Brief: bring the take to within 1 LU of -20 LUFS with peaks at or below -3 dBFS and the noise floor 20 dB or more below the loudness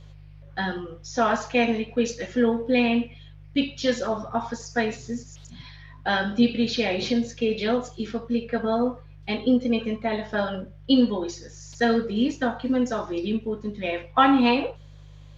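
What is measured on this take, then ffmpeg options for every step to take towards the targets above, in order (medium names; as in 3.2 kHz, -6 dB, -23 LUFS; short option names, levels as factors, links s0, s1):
hum 50 Hz; highest harmonic 150 Hz; hum level -44 dBFS; loudness -25.0 LUFS; peak level -5.5 dBFS; loudness target -20.0 LUFS
-> -af "bandreject=f=50:t=h:w=4,bandreject=f=100:t=h:w=4,bandreject=f=150:t=h:w=4"
-af "volume=1.78,alimiter=limit=0.708:level=0:latency=1"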